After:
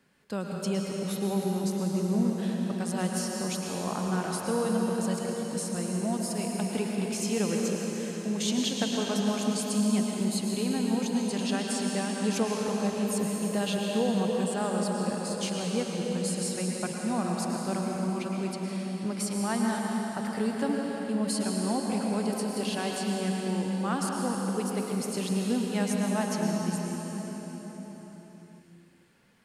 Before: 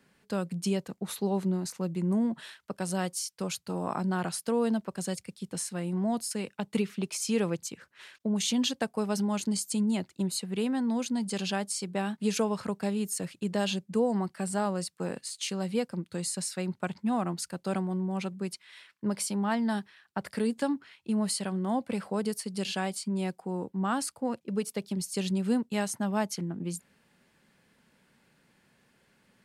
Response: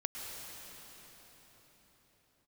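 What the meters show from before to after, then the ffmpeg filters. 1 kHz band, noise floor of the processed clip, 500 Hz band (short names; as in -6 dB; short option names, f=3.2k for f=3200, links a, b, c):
+1.5 dB, -48 dBFS, +2.0 dB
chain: -filter_complex "[1:a]atrim=start_sample=2205[a];[0:a][a]afir=irnorm=-1:irlink=0"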